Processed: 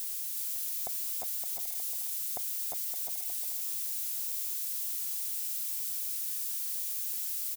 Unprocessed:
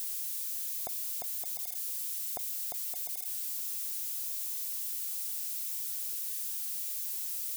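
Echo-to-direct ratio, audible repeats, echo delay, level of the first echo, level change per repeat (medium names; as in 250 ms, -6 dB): -4.0 dB, 2, 362 ms, -4.0 dB, -16.0 dB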